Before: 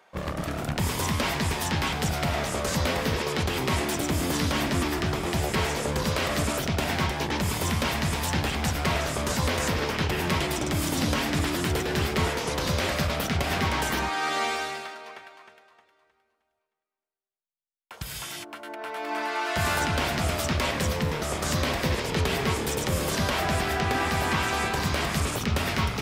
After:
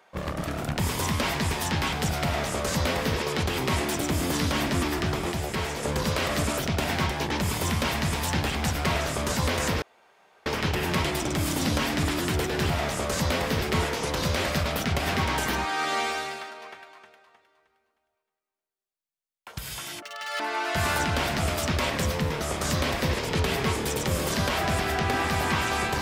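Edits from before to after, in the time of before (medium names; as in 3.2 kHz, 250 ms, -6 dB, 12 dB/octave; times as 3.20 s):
2.25–3.17 s: copy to 12.06 s
5.32–5.83 s: gain -3.5 dB
9.82 s: insert room tone 0.64 s
18.46–19.21 s: speed 198%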